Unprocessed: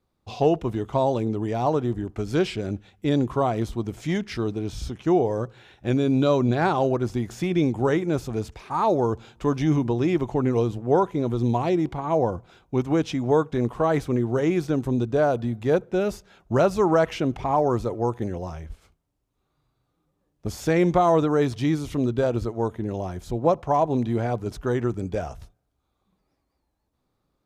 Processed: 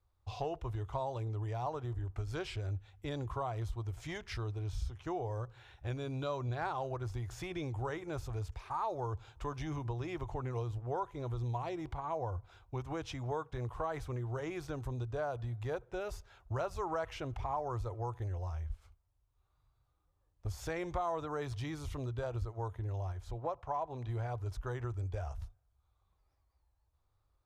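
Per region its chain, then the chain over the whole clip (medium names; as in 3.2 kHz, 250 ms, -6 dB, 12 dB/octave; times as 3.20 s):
23.12–24.09 s: low-pass 2.3 kHz 6 dB/octave + tilt EQ +1.5 dB/octave
whole clip: FFT filter 100 Hz 0 dB, 200 Hz -28 dB, 320 Hz -18 dB, 1 kHz -7 dB, 2.2 kHz -11 dB; compression 2:1, threshold -42 dBFS; trim +3 dB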